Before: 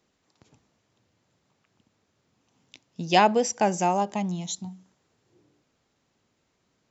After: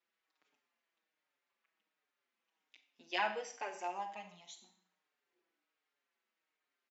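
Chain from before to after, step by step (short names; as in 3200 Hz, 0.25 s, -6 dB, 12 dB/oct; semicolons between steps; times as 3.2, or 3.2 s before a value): Chebyshev band-pass 260–2000 Hz, order 2; differentiator; Schroeder reverb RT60 0.52 s, combs from 30 ms, DRR 7 dB; endless flanger 5.4 ms -1.3 Hz; gain +5.5 dB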